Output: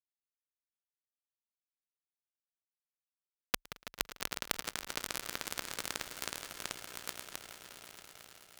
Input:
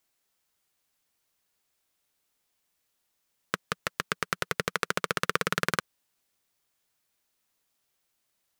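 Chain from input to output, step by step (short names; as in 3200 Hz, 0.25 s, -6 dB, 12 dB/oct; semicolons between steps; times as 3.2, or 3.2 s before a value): regenerating reverse delay 0.322 s, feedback 73%, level -1 dB; reverse; compressor 4:1, threshold -35 dBFS, peak gain reduction 14 dB; reverse; bit-crush 5-bit; added harmonics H 3 -9 dB, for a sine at -13.5 dBFS; on a send: swelling echo 0.111 s, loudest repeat 5, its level -16.5 dB; on the sum: ring modulator 30 Hz; gain +11.5 dB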